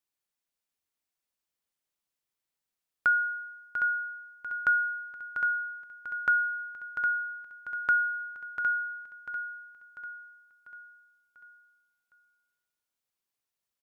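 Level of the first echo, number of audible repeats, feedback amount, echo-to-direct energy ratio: -8.5 dB, 5, 48%, -7.5 dB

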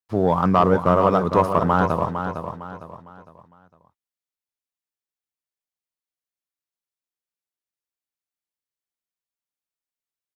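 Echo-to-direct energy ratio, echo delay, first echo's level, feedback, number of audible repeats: -7.5 dB, 0.456 s, -8.0 dB, 36%, 4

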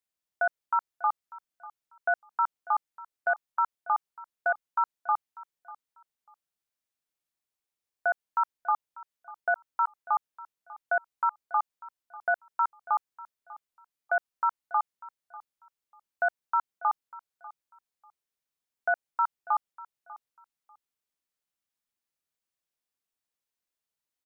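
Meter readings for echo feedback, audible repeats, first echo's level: 21%, 2, -19.0 dB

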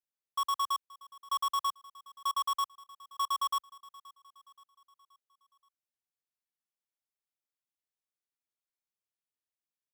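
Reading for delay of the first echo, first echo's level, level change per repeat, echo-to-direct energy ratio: 0.526 s, -21.0 dB, -6.0 dB, -20.0 dB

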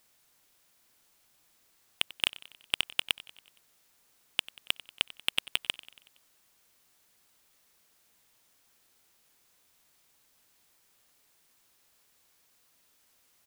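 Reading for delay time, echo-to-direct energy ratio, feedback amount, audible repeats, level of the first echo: 93 ms, -17.0 dB, 58%, 4, -19.0 dB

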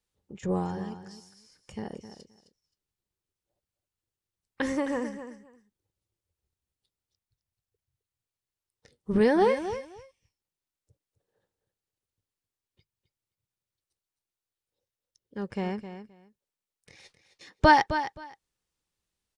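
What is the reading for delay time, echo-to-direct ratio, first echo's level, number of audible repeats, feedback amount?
0.262 s, -11.0 dB, -11.0 dB, 2, 17%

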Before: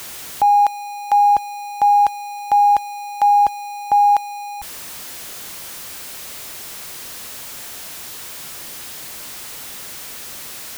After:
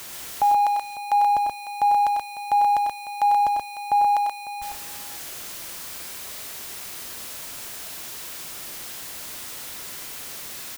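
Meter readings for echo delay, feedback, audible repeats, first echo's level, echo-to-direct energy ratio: 96 ms, no steady repeat, 3, -6.0 dB, -2.0 dB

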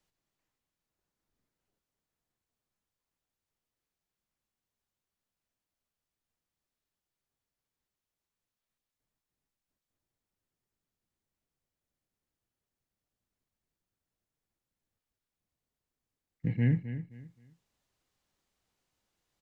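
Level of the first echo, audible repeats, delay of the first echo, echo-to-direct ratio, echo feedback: -11.5 dB, 3, 0.262 s, -11.0 dB, 26%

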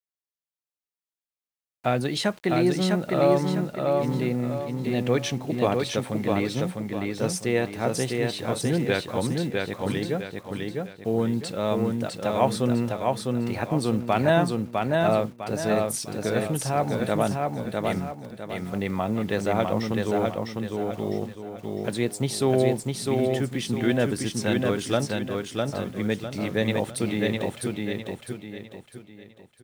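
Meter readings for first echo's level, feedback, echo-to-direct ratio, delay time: -3.0 dB, 37%, -2.5 dB, 0.654 s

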